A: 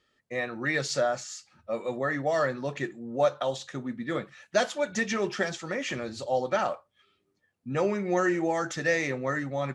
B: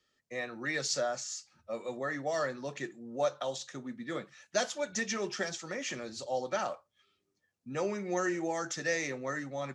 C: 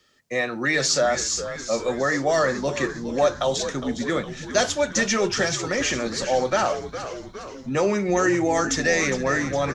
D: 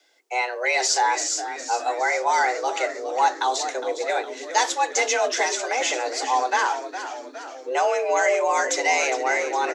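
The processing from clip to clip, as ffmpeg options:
-filter_complex "[0:a]equalizer=f=6k:t=o:w=1:g=8.5,acrossover=split=130|630|4200[a][b][c][d];[a]acompressor=threshold=-57dB:ratio=6[e];[e][b][c][d]amix=inputs=4:normalize=0,volume=-6.5dB"
-filter_complex "[0:a]asplit=2[a][b];[b]alimiter=level_in=4.5dB:limit=-24dB:level=0:latency=1:release=21,volume=-4.5dB,volume=2dB[c];[a][c]amix=inputs=2:normalize=0,asplit=8[d][e][f][g][h][i][j][k];[e]adelay=410,afreqshift=-81,volume=-11dB[l];[f]adelay=820,afreqshift=-162,volume=-15.7dB[m];[g]adelay=1230,afreqshift=-243,volume=-20.5dB[n];[h]adelay=1640,afreqshift=-324,volume=-25.2dB[o];[i]adelay=2050,afreqshift=-405,volume=-29.9dB[p];[j]adelay=2460,afreqshift=-486,volume=-34.7dB[q];[k]adelay=2870,afreqshift=-567,volume=-39.4dB[r];[d][l][m][n][o][p][q][r]amix=inputs=8:normalize=0,volume=6.5dB"
-af "afreqshift=250"

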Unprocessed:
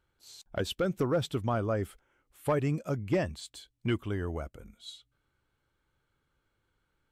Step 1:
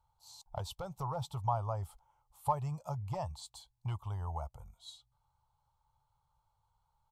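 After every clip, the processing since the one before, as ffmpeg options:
-filter_complex "[0:a]asplit=2[a][b];[b]acompressor=threshold=-35dB:ratio=6,volume=1dB[c];[a][c]amix=inputs=2:normalize=0,firequalizer=gain_entry='entry(130,0);entry(250,-28);entry(870,12);entry(1600,-20);entry(4200,-4)':delay=0.05:min_phase=1,volume=-6dB"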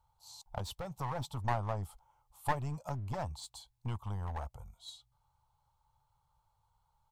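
-af "aeval=exprs='clip(val(0),-1,0.00794)':c=same,volume=2dB"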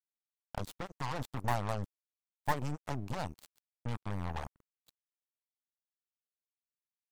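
-af "acrusher=bits=5:mix=0:aa=0.5,volume=1dB"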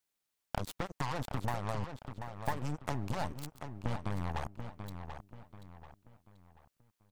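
-filter_complex "[0:a]acompressor=threshold=-42dB:ratio=6,asplit=2[a][b];[b]adelay=736,lowpass=f=4.5k:p=1,volume=-8dB,asplit=2[c][d];[d]adelay=736,lowpass=f=4.5k:p=1,volume=0.38,asplit=2[e][f];[f]adelay=736,lowpass=f=4.5k:p=1,volume=0.38,asplit=2[g][h];[h]adelay=736,lowpass=f=4.5k:p=1,volume=0.38[i];[c][e][g][i]amix=inputs=4:normalize=0[j];[a][j]amix=inputs=2:normalize=0,volume=10.5dB"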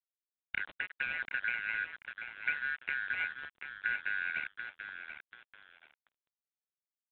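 -af "afftfilt=real='real(if(lt(b,272),68*(eq(floor(b/68),0)*2+eq(floor(b/68),1)*0+eq(floor(b/68),2)*3+eq(floor(b/68),3)*1)+mod(b,68),b),0)':imag='imag(if(lt(b,272),68*(eq(floor(b/68),0)*2+eq(floor(b/68),1)*0+eq(floor(b/68),2)*3+eq(floor(b/68),3)*1)+mod(b,68),b),0)':win_size=2048:overlap=0.75,aresample=8000,aeval=exprs='sgn(val(0))*max(abs(val(0))-0.00376,0)':c=same,aresample=44100"

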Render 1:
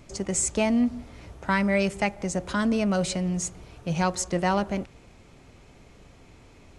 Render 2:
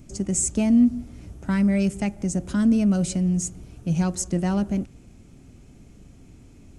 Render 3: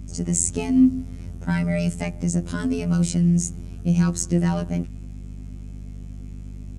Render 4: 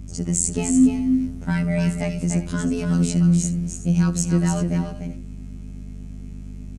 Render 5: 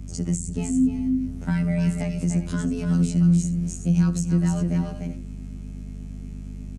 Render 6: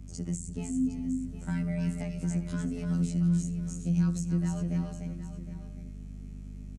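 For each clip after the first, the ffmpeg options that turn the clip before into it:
-af "acontrast=47,equalizer=f=250:t=o:w=1:g=4,equalizer=f=500:t=o:w=1:g=-8,equalizer=f=1k:t=o:w=1:g=-11,equalizer=f=2k:t=o:w=1:g=-8,equalizer=f=4k:t=o:w=1:g=-9,volume=-1.5dB"
-af "afftfilt=real='hypot(re,im)*cos(PI*b)':imag='0':win_size=2048:overlap=0.75,aeval=exprs='val(0)+0.0112*(sin(2*PI*50*n/s)+sin(2*PI*2*50*n/s)/2+sin(2*PI*3*50*n/s)/3+sin(2*PI*4*50*n/s)/4+sin(2*PI*5*50*n/s)/5)':c=same,volume=5dB"
-af "aecho=1:1:69|295|372|380:0.106|0.473|0.112|0.133"
-filter_complex "[0:a]acrossover=split=240[a][b];[b]acompressor=threshold=-31dB:ratio=6[c];[a][c]amix=inputs=2:normalize=0"
-af "aecho=1:1:761:0.251,volume=-8.5dB"

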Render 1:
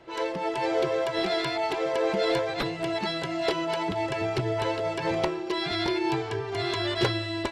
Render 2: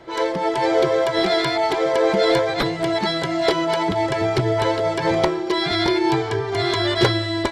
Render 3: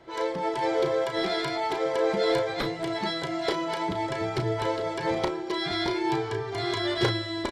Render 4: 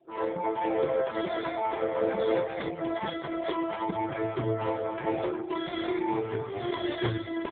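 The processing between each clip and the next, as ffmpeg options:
-af "bandreject=f=2.7k:w=7.3,volume=8dB"
-filter_complex "[0:a]asplit=2[a][b];[b]adelay=34,volume=-8dB[c];[a][c]amix=inputs=2:normalize=0,volume=-8.5dB"
-af "afftdn=nr=25:nf=-45,aecho=1:1:714:0.141" -ar 8000 -c:a libopencore_amrnb -b:a 4750

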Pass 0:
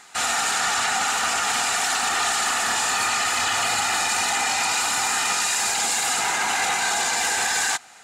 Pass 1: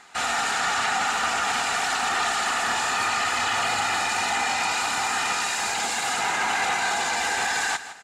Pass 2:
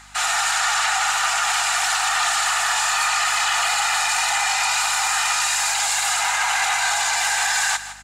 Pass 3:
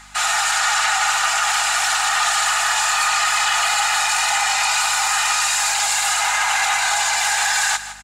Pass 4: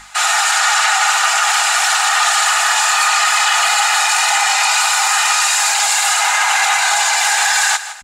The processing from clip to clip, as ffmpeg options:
-af "highshelf=f=5.6k:g=-11.5,aecho=1:1:161|322|483:0.211|0.0697|0.023"
-af "highpass=f=730:w=0.5412,highpass=f=730:w=1.3066,highshelf=f=5.7k:g=8.5,aeval=exprs='val(0)+0.002*(sin(2*PI*50*n/s)+sin(2*PI*2*50*n/s)/2+sin(2*PI*3*50*n/s)/3+sin(2*PI*4*50*n/s)/4+sin(2*PI*5*50*n/s)/5)':c=same,volume=3dB"
-af "aecho=1:1:4.8:0.31,volume=1.5dB"
-af "bandreject=f=50:t=h:w=6,bandreject=f=100:t=h:w=6,bandreject=f=150:t=h:w=6,bandreject=f=200:t=h:w=6,bandreject=f=250:t=h:w=6,volume=4.5dB"

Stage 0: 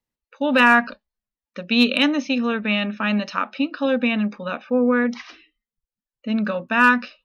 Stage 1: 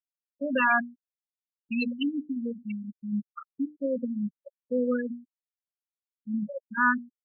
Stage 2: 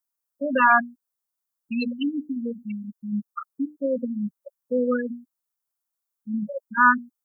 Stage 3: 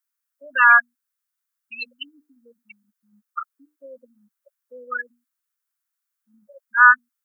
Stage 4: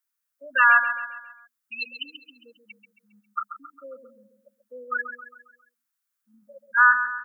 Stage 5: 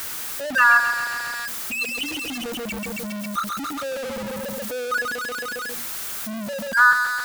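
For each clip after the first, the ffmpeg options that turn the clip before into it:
-af "afftfilt=real='re*gte(hypot(re,im),0.631)':imag='im*gte(hypot(re,im),0.631)':win_size=1024:overlap=0.75,bandreject=f=60:t=h:w=6,bandreject=f=120:t=h:w=6,bandreject=f=180:t=h:w=6,bandreject=f=240:t=h:w=6,bandreject=f=300:t=h:w=6,afftfilt=real='re*gte(hypot(re,im),0.0562)':imag='im*gte(hypot(re,im),0.0562)':win_size=1024:overlap=0.75,volume=-7dB"
-af "highshelf=f=1.7k:t=q:w=1.5:g=-11.5,crystalizer=i=8:c=0,volume=2dB"
-af "highpass=f=1.5k:t=q:w=2,volume=1.5dB"
-filter_complex "[0:a]acompressor=threshold=-15dB:ratio=2,asplit=2[a][b];[b]aecho=0:1:135|270|405|540|675:0.316|0.149|0.0699|0.0328|0.0154[c];[a][c]amix=inputs=2:normalize=0"
-af "aeval=exprs='val(0)+0.5*0.0631*sgn(val(0))':c=same"

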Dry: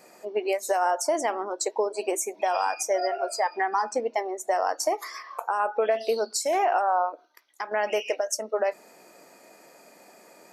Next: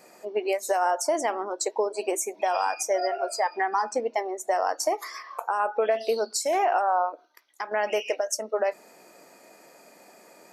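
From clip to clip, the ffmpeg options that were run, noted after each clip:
-af anull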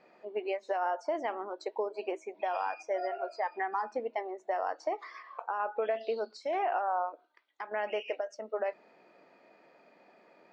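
-af "lowpass=f=3.7k:w=0.5412,lowpass=f=3.7k:w=1.3066,volume=-7.5dB"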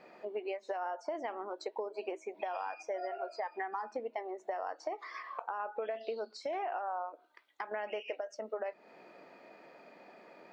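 -af "acompressor=threshold=-43dB:ratio=3,volume=5dB"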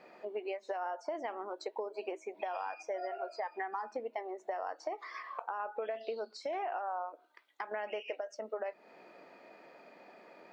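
-af "lowshelf=f=120:g=-6.5"

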